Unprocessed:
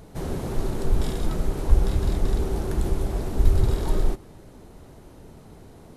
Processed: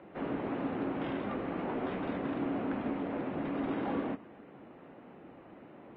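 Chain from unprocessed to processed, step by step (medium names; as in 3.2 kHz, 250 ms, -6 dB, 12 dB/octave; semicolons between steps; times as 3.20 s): 1.46–2.10 s: doubling 14 ms -6.5 dB; mistuned SSB -110 Hz 320–2800 Hz; Vorbis 32 kbps 22.05 kHz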